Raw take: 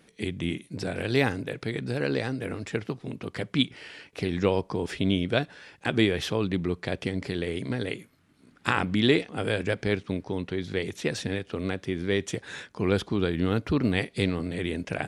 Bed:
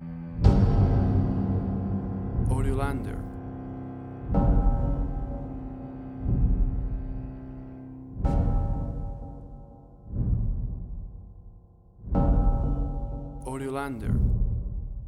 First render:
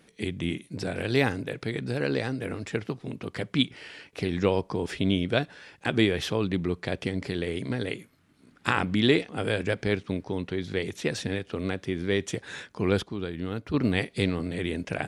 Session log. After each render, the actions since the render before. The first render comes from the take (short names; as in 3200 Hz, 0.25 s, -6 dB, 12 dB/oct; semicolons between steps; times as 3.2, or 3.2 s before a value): 13.03–13.74 gain -7 dB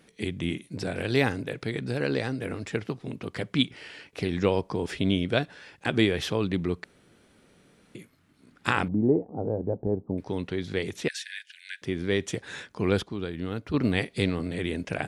6.84–7.95 room tone; 8.88–10.18 Chebyshev low-pass 850 Hz, order 4; 11.08–11.82 Chebyshev high-pass 1500 Hz, order 10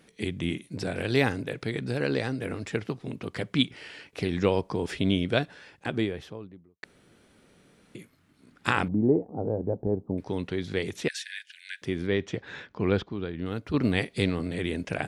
5.36–6.83 studio fade out; 12.07–13.46 air absorption 170 m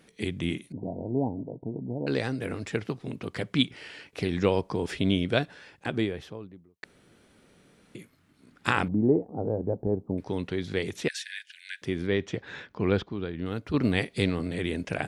0.72–2.07 rippled Chebyshev low-pass 960 Hz, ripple 6 dB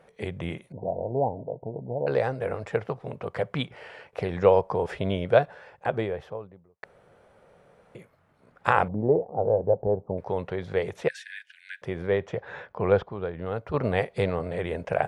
EQ curve 150 Hz 0 dB, 290 Hz -10 dB, 520 Hz +10 dB, 820 Hz +9 dB, 4100 Hz -10 dB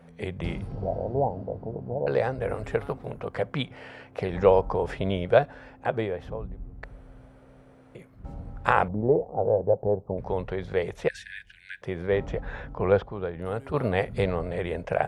add bed -15 dB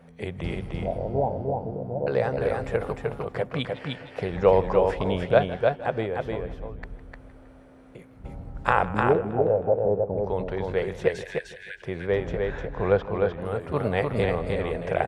on a send: echo 0.303 s -3.5 dB; on the sum: warbling echo 0.159 s, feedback 59%, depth 85 cents, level -17.5 dB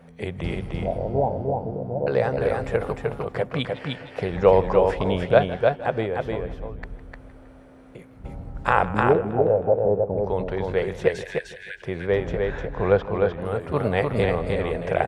gain +2.5 dB; limiter -2 dBFS, peak gain reduction 2.5 dB